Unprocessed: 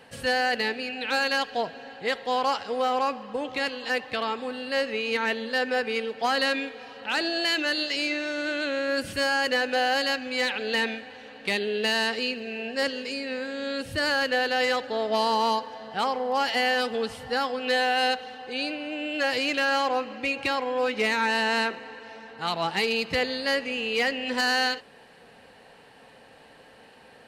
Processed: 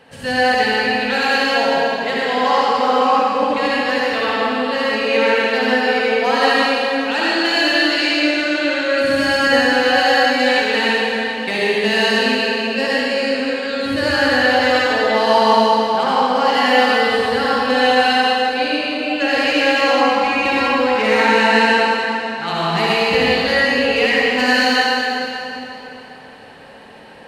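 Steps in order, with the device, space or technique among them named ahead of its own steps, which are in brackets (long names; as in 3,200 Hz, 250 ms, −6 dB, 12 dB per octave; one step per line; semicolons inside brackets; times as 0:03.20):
swimming-pool hall (convolution reverb RT60 3.3 s, pre-delay 56 ms, DRR −8 dB; high-shelf EQ 5,700 Hz −6 dB)
level +3 dB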